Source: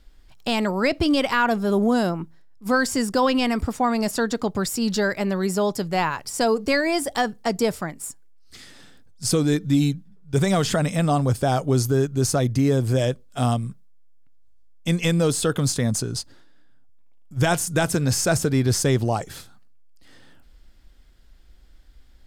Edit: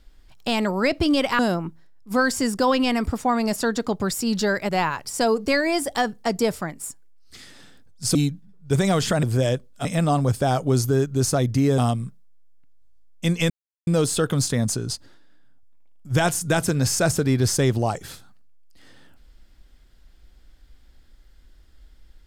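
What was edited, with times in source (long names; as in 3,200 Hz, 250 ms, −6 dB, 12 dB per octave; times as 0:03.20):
0:01.39–0:01.94: remove
0:05.24–0:05.89: remove
0:09.35–0:09.78: remove
0:12.79–0:13.41: move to 0:10.86
0:15.13: splice in silence 0.37 s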